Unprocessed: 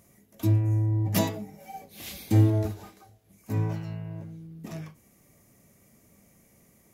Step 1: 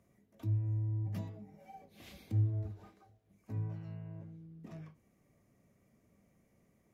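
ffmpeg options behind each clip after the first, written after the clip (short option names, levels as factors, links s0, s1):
-filter_complex "[0:a]lowpass=f=2000:p=1,bandreject=f=850:w=22,acrossover=split=150[s0][s1];[s1]acompressor=threshold=0.0112:ratio=6[s2];[s0][s2]amix=inputs=2:normalize=0,volume=0.376"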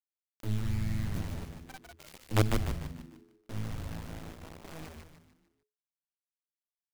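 -filter_complex "[0:a]acrusher=bits=5:dc=4:mix=0:aa=0.000001,asplit=2[s0][s1];[s1]asplit=5[s2][s3][s4][s5][s6];[s2]adelay=149,afreqshift=-85,volume=0.631[s7];[s3]adelay=298,afreqshift=-170,volume=0.266[s8];[s4]adelay=447,afreqshift=-255,volume=0.111[s9];[s5]adelay=596,afreqshift=-340,volume=0.0468[s10];[s6]adelay=745,afreqshift=-425,volume=0.0197[s11];[s7][s8][s9][s10][s11]amix=inputs=5:normalize=0[s12];[s0][s12]amix=inputs=2:normalize=0,volume=1.68"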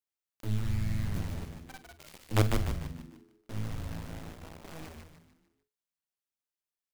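-filter_complex "[0:a]asplit=2[s0][s1];[s1]adelay=48,volume=0.211[s2];[s0][s2]amix=inputs=2:normalize=0"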